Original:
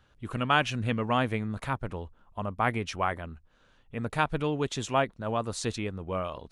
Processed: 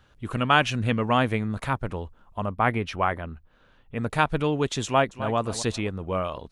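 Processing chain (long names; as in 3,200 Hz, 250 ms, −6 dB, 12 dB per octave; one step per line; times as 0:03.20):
0:02.51–0:03.96: parametric band 7,200 Hz −11 dB 1.2 octaves
0:04.85–0:05.36: delay throw 260 ms, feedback 30%, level −12.5 dB
level +4.5 dB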